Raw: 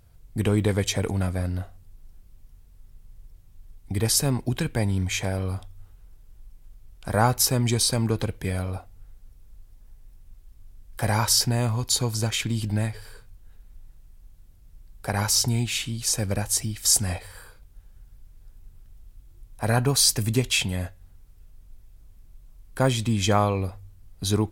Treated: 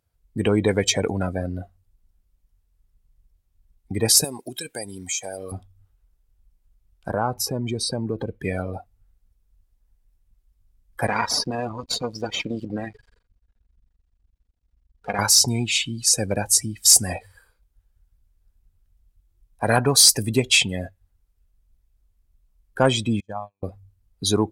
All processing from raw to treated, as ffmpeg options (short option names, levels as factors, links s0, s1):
-filter_complex "[0:a]asettb=1/sr,asplit=3[s0][s1][s2];[s0]atrim=end=4.244[s3];[s1]atrim=start=4.24:end=5.52,asetpts=PTS-STARTPTS,afade=t=in:d=0.004:c=qsin,afade=t=out:st=1.276:d=0.004:c=qsin,bass=f=250:g=-13,treble=f=4000:g=14,acompressor=threshold=0.0251:ratio=3:attack=3.2:release=140:knee=1:detection=peak[s4];[s2]atrim=start=5.516[s5];[s3][s4]acrossfade=d=0.004:c1=hsin:c2=qsin[s6];[s6][s5]acrossfade=d=0.004:c1=qsin:c2=hsin,asettb=1/sr,asplit=3[s7][s8][s9];[s7]atrim=end=7.114[s10];[s8]atrim=start=7.11:end=8.4,asetpts=PTS-STARTPTS,afade=t=in:d=0.004:c=qsin,afade=t=out:st=1.286:d=0.004:c=qsin,highshelf=f=2700:g=-10,acompressor=threshold=0.0562:ratio=3:attack=3.2:release=140:knee=1:detection=peak[s11];[s9]atrim=start=8.396[s12];[s10][s11]acrossfade=d=0.004:c1=hsin:c2=qsin[s13];[s13][s12]acrossfade=d=0.004:c1=qsin:c2=hsin,asettb=1/sr,asplit=3[s14][s15][s16];[s14]atrim=end=11.074[s17];[s15]atrim=start=11.07:end=15.19,asetpts=PTS-STARTPTS,afade=t=in:d=0.004:c=qsin,afade=t=out:st=4.116:d=0.004:c=qsin,lowpass=5200,aecho=1:1:4.2:0.39,atrim=end_sample=181692,aeval=exprs='max(val(0),0)':c=same[s18];[s16]atrim=start=15.186[s19];[s17][s18]acrossfade=d=0.004:c1=hsin:c2=qsin[s20];[s20][s19]acrossfade=d=0.004:c1=qsin:c2=hsin,asettb=1/sr,asplit=3[s21][s22][s23];[s21]atrim=end=23.204[s24];[s22]atrim=start=23.2:end=23.63,asetpts=PTS-STARTPTS,afade=t=in:d=0.004:c=qsin,afade=t=out:st=0.426:d=0.004:c=qsin,agate=range=0.00794:threshold=0.112:ratio=16:release=100:detection=peak,aecho=1:1:1.2:0.46,atrim=end_sample=18963,acompressor=threshold=0.0126:ratio=2:attack=3.2:release=140:knee=1:detection=peak[s25];[s23]atrim=start=23.626[s26];[s24][s25]acrossfade=d=0.004:c1=hsin:c2=qsin[s27];[s27][s26]acrossfade=d=0.004:c1=qsin:c2=hsin,afftdn=nr=21:nf=-34,highpass=f=310:p=1,acontrast=89"